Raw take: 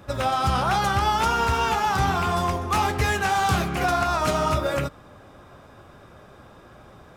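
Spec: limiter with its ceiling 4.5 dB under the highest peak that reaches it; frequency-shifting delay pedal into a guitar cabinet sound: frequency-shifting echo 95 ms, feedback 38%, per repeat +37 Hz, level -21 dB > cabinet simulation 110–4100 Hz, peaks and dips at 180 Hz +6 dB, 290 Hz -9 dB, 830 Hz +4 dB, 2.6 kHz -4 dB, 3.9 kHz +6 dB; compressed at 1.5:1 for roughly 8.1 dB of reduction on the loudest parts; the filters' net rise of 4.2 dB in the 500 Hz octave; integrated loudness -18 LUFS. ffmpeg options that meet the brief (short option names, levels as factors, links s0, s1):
-filter_complex "[0:a]equalizer=f=500:t=o:g=5.5,acompressor=threshold=0.01:ratio=1.5,alimiter=limit=0.0794:level=0:latency=1,asplit=4[s0][s1][s2][s3];[s1]adelay=95,afreqshift=37,volume=0.0891[s4];[s2]adelay=190,afreqshift=74,volume=0.0339[s5];[s3]adelay=285,afreqshift=111,volume=0.0129[s6];[s0][s4][s5][s6]amix=inputs=4:normalize=0,highpass=110,equalizer=f=180:t=q:w=4:g=6,equalizer=f=290:t=q:w=4:g=-9,equalizer=f=830:t=q:w=4:g=4,equalizer=f=2600:t=q:w=4:g=-4,equalizer=f=3900:t=q:w=4:g=6,lowpass=f=4100:w=0.5412,lowpass=f=4100:w=1.3066,volume=3.76"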